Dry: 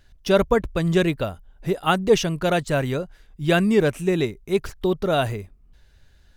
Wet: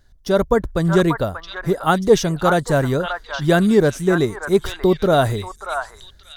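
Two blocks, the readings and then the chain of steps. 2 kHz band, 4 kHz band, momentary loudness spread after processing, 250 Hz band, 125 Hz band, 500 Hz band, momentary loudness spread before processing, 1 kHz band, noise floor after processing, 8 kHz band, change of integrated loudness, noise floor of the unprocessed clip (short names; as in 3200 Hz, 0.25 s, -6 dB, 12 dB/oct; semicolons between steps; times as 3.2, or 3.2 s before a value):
+3.5 dB, +1.0 dB, 11 LU, +4.0 dB, +4.5 dB, +4.0 dB, 10 LU, +5.5 dB, -49 dBFS, +4.0 dB, +3.5 dB, -55 dBFS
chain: on a send: delay with a stepping band-pass 0.586 s, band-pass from 1200 Hz, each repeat 1.4 oct, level -1 dB; on the sum: AGC gain up to 7.5 dB; bell 2600 Hz -13 dB 0.52 oct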